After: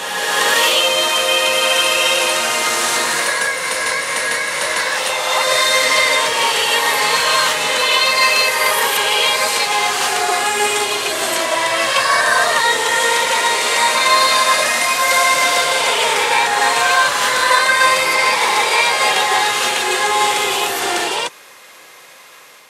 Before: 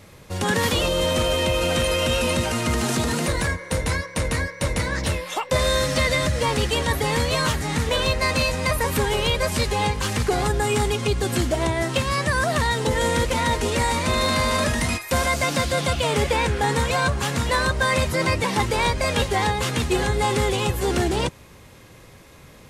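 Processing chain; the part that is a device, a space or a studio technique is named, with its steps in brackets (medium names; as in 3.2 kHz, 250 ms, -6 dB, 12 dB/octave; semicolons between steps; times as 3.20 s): ghost voice (reverse; reverberation RT60 2.6 s, pre-delay 31 ms, DRR -2.5 dB; reverse; high-pass 770 Hz 12 dB/octave); trim +6.5 dB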